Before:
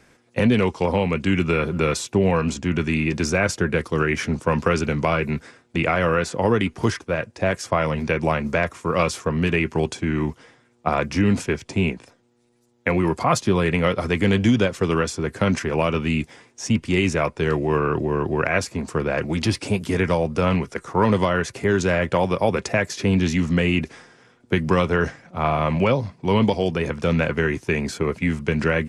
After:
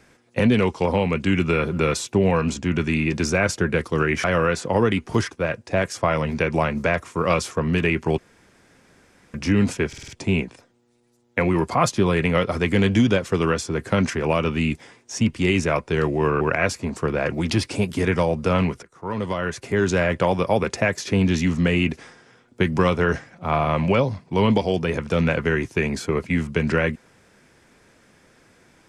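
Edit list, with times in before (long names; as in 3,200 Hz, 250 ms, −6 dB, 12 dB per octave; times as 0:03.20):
0:04.24–0:05.93: remove
0:09.87–0:11.03: fill with room tone
0:11.57: stutter 0.05 s, 5 plays
0:17.90–0:18.33: remove
0:20.75–0:21.81: fade in, from −23 dB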